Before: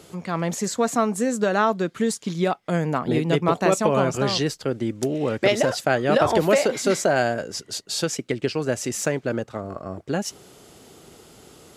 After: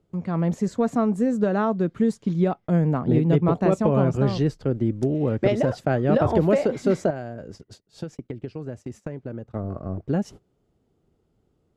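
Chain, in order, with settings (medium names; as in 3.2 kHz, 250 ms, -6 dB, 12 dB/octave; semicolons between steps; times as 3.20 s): tilt EQ -4 dB/octave; 7.10–9.49 s: compression 5:1, threshold -25 dBFS, peak gain reduction 12.5 dB; gate -34 dBFS, range -21 dB; trim -5.5 dB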